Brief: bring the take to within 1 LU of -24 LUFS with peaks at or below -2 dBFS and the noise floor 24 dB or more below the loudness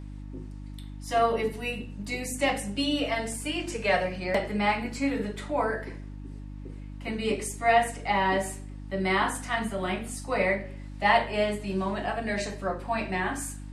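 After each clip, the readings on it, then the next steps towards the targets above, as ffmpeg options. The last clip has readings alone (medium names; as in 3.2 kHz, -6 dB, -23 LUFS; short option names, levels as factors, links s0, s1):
hum 50 Hz; highest harmonic 300 Hz; hum level -37 dBFS; loudness -28.0 LUFS; peak level -8.5 dBFS; loudness target -24.0 LUFS
-> -af "bandreject=f=50:t=h:w=4,bandreject=f=100:t=h:w=4,bandreject=f=150:t=h:w=4,bandreject=f=200:t=h:w=4,bandreject=f=250:t=h:w=4,bandreject=f=300:t=h:w=4"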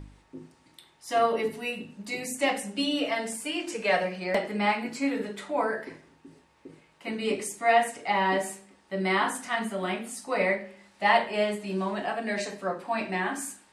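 hum not found; loudness -28.5 LUFS; peak level -8.0 dBFS; loudness target -24.0 LUFS
-> -af "volume=1.68"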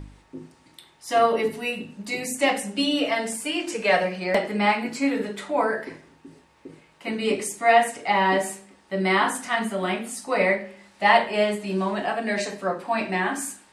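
loudness -24.0 LUFS; peak level -3.5 dBFS; noise floor -58 dBFS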